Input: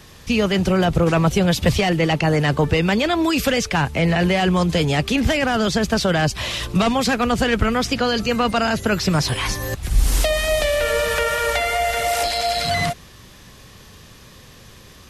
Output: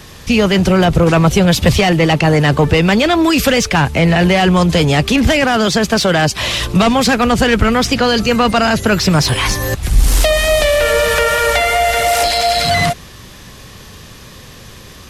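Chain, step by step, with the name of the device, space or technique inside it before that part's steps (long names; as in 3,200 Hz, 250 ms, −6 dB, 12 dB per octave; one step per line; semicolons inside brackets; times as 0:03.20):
0:05.44–0:06.43: high-pass filter 160 Hz 6 dB per octave
parallel distortion (in parallel at −4.5 dB: hard clipping −20 dBFS, distortion −8 dB)
on the sum: level +4 dB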